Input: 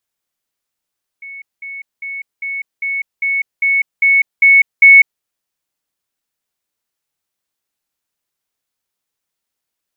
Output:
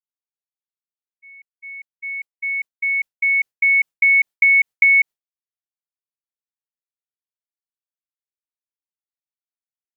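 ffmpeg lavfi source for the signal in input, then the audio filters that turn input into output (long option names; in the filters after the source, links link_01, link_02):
-f lavfi -i "aevalsrc='pow(10,(-28.5+3*floor(t/0.4))/20)*sin(2*PI*2210*t)*clip(min(mod(t,0.4),0.2-mod(t,0.4))/0.005,0,1)':duration=4:sample_rate=44100"
-af "acompressor=threshold=-11dB:ratio=10,agate=range=-33dB:threshold=-24dB:ratio=3:detection=peak"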